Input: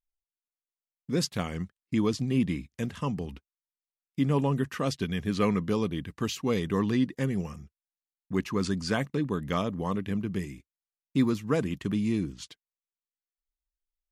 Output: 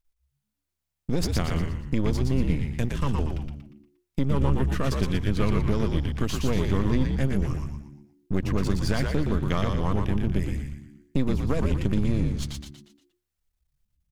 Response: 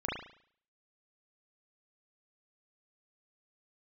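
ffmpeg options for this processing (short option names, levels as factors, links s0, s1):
-filter_complex "[0:a]aeval=exprs='if(lt(val(0),0),0.251*val(0),val(0))':c=same,lowshelf=f=140:g=9.5,acompressor=threshold=0.0224:ratio=2.5,asplit=2[s0][s1];[s1]asplit=5[s2][s3][s4][s5][s6];[s2]adelay=118,afreqshift=-72,volume=0.668[s7];[s3]adelay=236,afreqshift=-144,volume=0.282[s8];[s4]adelay=354,afreqshift=-216,volume=0.117[s9];[s5]adelay=472,afreqshift=-288,volume=0.0495[s10];[s6]adelay=590,afreqshift=-360,volume=0.0209[s11];[s7][s8][s9][s10][s11]amix=inputs=5:normalize=0[s12];[s0][s12]amix=inputs=2:normalize=0,volume=2.82"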